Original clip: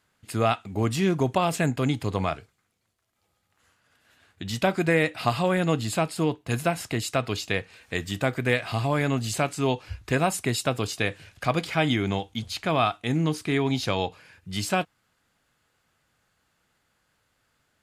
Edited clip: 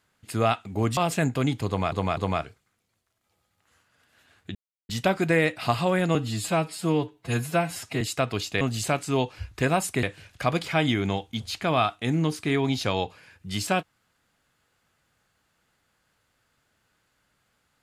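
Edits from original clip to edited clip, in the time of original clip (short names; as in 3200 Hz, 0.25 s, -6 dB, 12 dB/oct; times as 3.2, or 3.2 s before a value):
0.97–1.39 cut
2.09–2.34 loop, 3 plays
4.47 insert silence 0.34 s
5.73–6.97 stretch 1.5×
7.57–9.11 cut
10.53–11.05 cut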